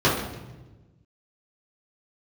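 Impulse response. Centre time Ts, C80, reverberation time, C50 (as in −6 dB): 50 ms, 6.5 dB, 1.2 s, 3.5 dB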